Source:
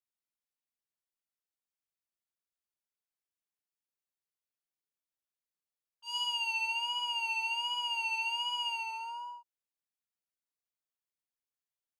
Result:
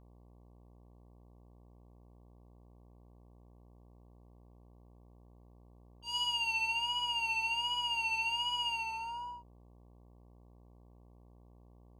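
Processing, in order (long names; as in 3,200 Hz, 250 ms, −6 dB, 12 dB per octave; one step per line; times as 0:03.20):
hum with harmonics 60 Hz, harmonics 19, −59 dBFS −6 dB per octave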